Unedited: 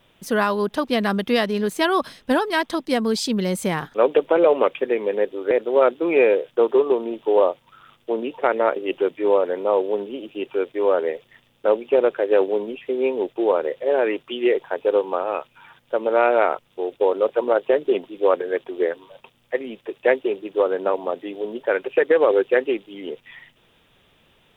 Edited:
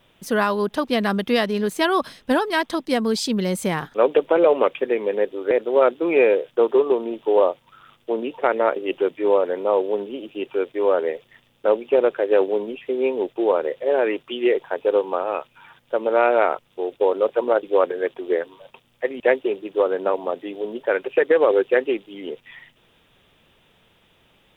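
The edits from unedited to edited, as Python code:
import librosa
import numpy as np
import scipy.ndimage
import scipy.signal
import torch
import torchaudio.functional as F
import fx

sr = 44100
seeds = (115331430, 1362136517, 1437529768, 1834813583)

y = fx.edit(x, sr, fx.cut(start_s=17.63, length_s=0.5),
    fx.cut(start_s=19.7, length_s=0.3), tone=tone)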